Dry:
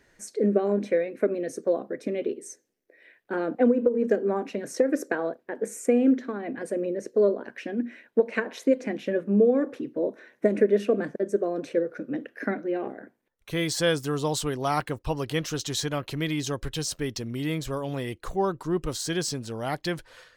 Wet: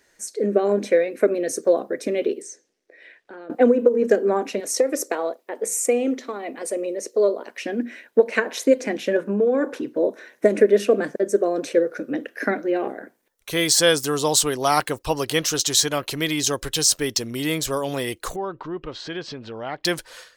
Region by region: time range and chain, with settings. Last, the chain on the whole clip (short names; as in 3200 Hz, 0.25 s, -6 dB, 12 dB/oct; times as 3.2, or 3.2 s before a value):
2.42–3.5 LPF 5400 Hz + compressor 3:1, threshold -49 dBFS
4.6–7.65 HPF 560 Hz 6 dB/oct + bell 1600 Hz -14 dB 0.23 oct
9.16–9.95 high shelf 10000 Hz -3.5 dB + compressor 4:1, threshold -22 dBFS + small resonant body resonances 960/1500 Hz, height 9 dB, ringing for 20 ms
18.36–19.85 LPF 3100 Hz 24 dB/oct + compressor 2:1, threshold -38 dBFS
whole clip: tone controls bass -9 dB, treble +8 dB; AGC gain up to 7.5 dB